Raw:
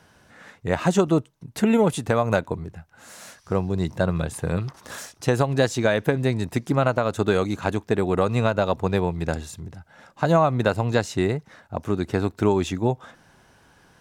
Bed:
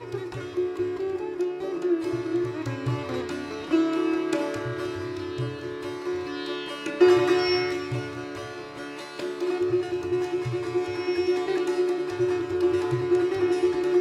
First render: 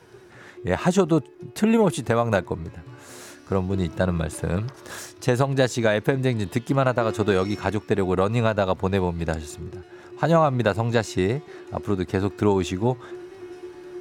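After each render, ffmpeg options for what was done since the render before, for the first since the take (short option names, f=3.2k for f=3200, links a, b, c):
-filter_complex "[1:a]volume=-16dB[a];[0:a][a]amix=inputs=2:normalize=0"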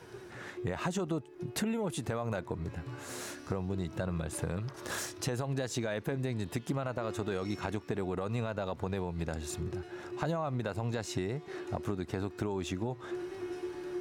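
-af "alimiter=limit=-13.5dB:level=0:latency=1:release=31,acompressor=threshold=-31dB:ratio=6"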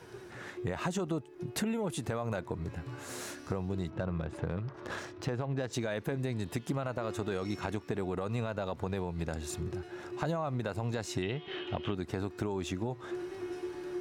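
-filter_complex "[0:a]asplit=3[a][b][c];[a]afade=t=out:st=3.89:d=0.02[d];[b]adynamicsmooth=sensitivity=5:basefreq=2.3k,afade=t=in:st=3.89:d=0.02,afade=t=out:st=5.72:d=0.02[e];[c]afade=t=in:st=5.72:d=0.02[f];[d][e][f]amix=inputs=3:normalize=0,asettb=1/sr,asplit=3[g][h][i];[g]atrim=end=11.224[j];[h]atrim=start=11.22:end=11.95,asetpts=PTS-STARTPTS,afade=t=in:d=0.004:c=qsin,afade=t=out:st=0.726:d=0.004:c=qsin,lowpass=f=3.1k:t=q:w=11[k];[i]atrim=start=11.946[l];[j][k]acrossfade=d=0.004:c1=hsin:c2=qsin[m];[m][l]acrossfade=d=0.004:c1=qsin:c2=hsin"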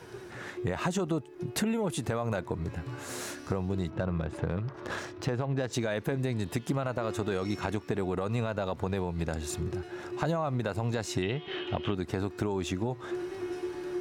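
-af "volume=3.5dB"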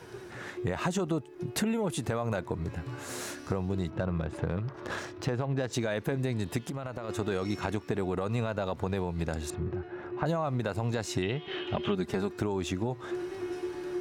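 -filter_complex "[0:a]asplit=3[a][b][c];[a]afade=t=out:st=6.63:d=0.02[d];[b]acompressor=threshold=-32dB:ratio=6:attack=3.2:release=140:knee=1:detection=peak,afade=t=in:st=6.63:d=0.02,afade=t=out:st=7.08:d=0.02[e];[c]afade=t=in:st=7.08:d=0.02[f];[d][e][f]amix=inputs=3:normalize=0,asettb=1/sr,asplit=3[g][h][i];[g]atrim=end=9.504[j];[h]atrim=start=9.5:end=10.26,asetpts=PTS-STARTPTS,afade=t=in:d=0.004:c=qsin,afade=t=out:st=0.756:d=0.004:c=qsin,lowpass=2k[k];[i]atrim=start=10.256[l];[j][k]acrossfade=d=0.004:c1=hsin:c2=qsin[m];[m][l]acrossfade=d=0.004:c1=qsin:c2=hsin,asettb=1/sr,asplit=3[n][o][p];[n]atrim=end=11.744[q];[o]atrim=start=11.74:end=12.33,asetpts=PTS-STARTPTS,afade=t=in:d=0.004:c=qsin,afade=t=out:st=0.586:d=0.004:c=qsin,aecho=1:1:5:0.65,atrim=end_sample=26019[r];[p]atrim=start=12.326[s];[q][r]acrossfade=d=0.004:c1=hsin:c2=qsin[t];[t][s]acrossfade=d=0.004:c1=qsin:c2=hsin"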